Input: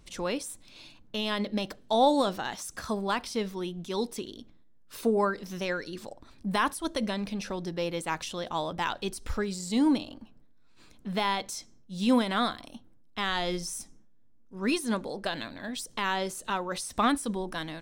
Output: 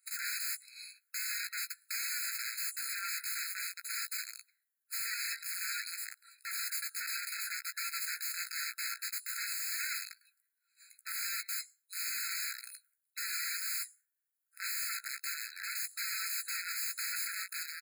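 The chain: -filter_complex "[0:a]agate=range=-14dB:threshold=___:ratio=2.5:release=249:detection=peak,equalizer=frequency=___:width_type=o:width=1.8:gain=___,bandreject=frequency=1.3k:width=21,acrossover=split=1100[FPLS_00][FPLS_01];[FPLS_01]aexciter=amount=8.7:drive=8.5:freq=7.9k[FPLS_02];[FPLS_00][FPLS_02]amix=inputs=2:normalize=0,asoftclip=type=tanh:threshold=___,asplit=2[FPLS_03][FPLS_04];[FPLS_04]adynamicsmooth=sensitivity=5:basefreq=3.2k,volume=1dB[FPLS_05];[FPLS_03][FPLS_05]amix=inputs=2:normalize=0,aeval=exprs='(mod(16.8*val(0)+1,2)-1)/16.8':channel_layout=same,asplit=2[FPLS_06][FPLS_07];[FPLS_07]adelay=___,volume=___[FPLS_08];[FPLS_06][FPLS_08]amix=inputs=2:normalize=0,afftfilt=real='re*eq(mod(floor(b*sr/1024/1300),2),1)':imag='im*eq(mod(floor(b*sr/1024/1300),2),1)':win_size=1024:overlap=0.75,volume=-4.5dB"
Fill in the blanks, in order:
-48dB, 4.4k, 9, -18dB, 16, -9.5dB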